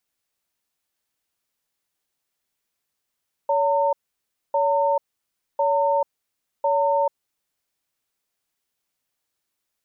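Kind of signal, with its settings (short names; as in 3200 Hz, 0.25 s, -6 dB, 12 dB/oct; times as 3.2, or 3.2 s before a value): cadence 566 Hz, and 910 Hz, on 0.44 s, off 0.61 s, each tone -20 dBFS 3.85 s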